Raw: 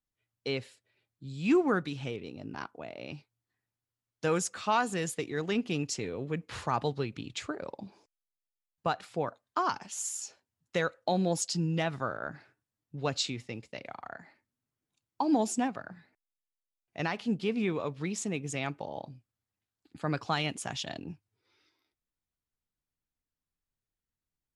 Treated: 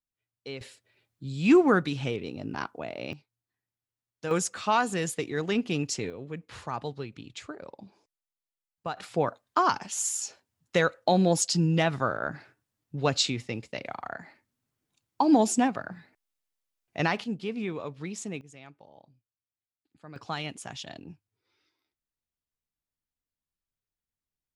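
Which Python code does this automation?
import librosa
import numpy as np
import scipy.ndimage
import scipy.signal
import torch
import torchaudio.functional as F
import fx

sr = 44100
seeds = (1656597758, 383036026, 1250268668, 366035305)

y = fx.gain(x, sr, db=fx.steps((0.0, -6.0), (0.61, 6.0), (3.13, -4.0), (4.31, 3.0), (6.1, -4.0), (8.97, 6.0), (17.24, -2.5), (18.41, -15.0), (20.16, -3.5)))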